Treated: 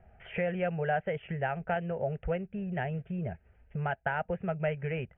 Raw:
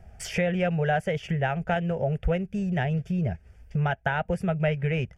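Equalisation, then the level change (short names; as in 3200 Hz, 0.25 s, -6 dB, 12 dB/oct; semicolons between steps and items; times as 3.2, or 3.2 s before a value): steep low-pass 3200 Hz 72 dB/oct; air absorption 430 m; low shelf 240 Hz -10 dB; -1.5 dB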